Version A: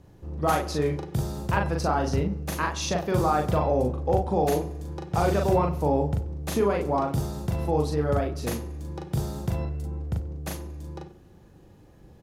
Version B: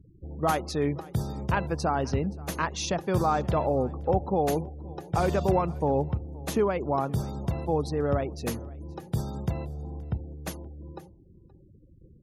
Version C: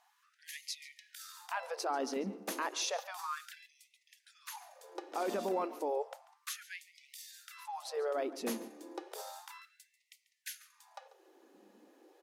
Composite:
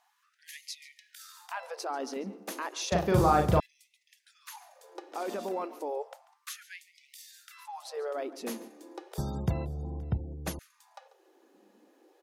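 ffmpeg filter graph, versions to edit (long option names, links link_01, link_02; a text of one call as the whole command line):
ffmpeg -i take0.wav -i take1.wav -i take2.wav -filter_complex "[2:a]asplit=3[link_01][link_02][link_03];[link_01]atrim=end=2.922[link_04];[0:a]atrim=start=2.918:end=3.602[link_05];[link_02]atrim=start=3.598:end=9.182[link_06];[1:a]atrim=start=9.178:end=10.592[link_07];[link_03]atrim=start=10.588[link_08];[link_04][link_05]acrossfade=duration=0.004:curve1=hsin:curve2=hsin[link_09];[link_09][link_06]acrossfade=duration=0.004:curve1=hsin:curve2=hsin[link_10];[link_10][link_07]acrossfade=duration=0.004:curve1=hsin:curve2=hsin[link_11];[link_11][link_08]acrossfade=duration=0.004:curve1=hsin:curve2=hsin" out.wav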